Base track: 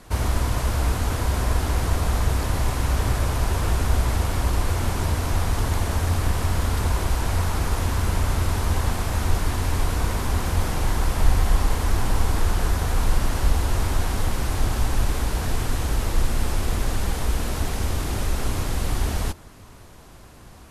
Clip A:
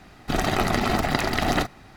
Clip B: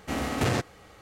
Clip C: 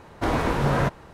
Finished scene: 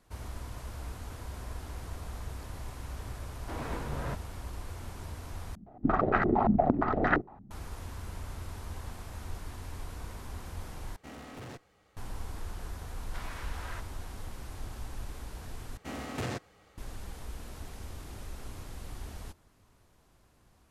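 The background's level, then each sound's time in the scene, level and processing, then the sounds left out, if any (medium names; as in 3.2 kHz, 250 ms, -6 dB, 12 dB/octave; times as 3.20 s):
base track -18.5 dB
3.26 s: add C -14 dB + tremolo 2.2 Hz, depth 31%
5.55 s: replace with A -6.5 dB + step-sequenced low-pass 8.7 Hz 210–1600 Hz
10.96 s: replace with B -12.5 dB + valve stage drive 28 dB, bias 0.55
12.92 s: add C -13.5 dB + high-pass 1.3 kHz
15.77 s: replace with B -9.5 dB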